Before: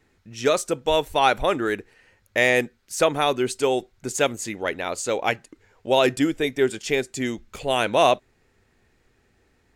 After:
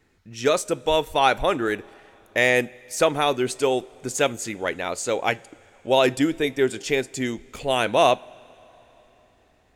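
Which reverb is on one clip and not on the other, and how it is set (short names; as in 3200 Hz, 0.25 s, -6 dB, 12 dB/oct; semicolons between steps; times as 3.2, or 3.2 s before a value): two-slope reverb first 0.28 s, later 4 s, from -18 dB, DRR 18 dB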